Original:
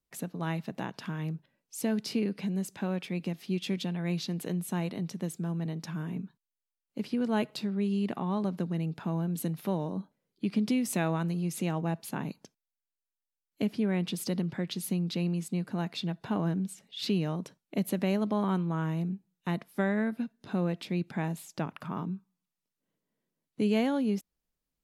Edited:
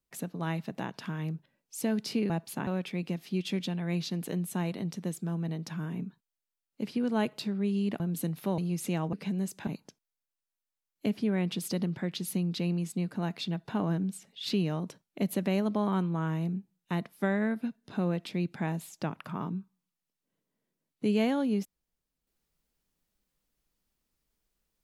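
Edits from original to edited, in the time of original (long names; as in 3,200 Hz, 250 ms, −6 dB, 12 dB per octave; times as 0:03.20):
0:02.30–0:02.84: swap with 0:11.86–0:12.23
0:08.17–0:09.21: remove
0:09.79–0:11.31: remove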